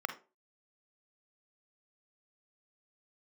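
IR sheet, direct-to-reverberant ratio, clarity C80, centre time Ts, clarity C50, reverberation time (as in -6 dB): 7.5 dB, 19.0 dB, 9 ms, 11.0 dB, 0.35 s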